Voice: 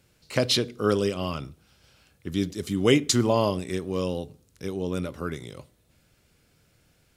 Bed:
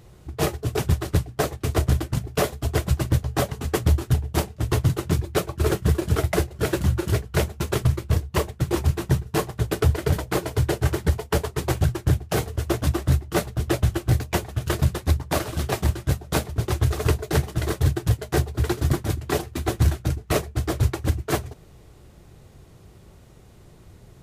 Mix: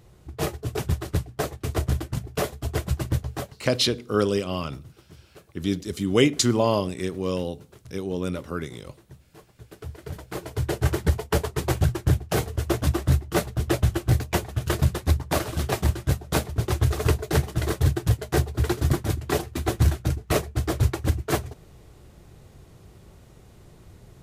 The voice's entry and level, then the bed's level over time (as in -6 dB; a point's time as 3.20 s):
3.30 s, +1.0 dB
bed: 3.29 s -4 dB
3.76 s -27 dB
9.37 s -27 dB
10.86 s -0.5 dB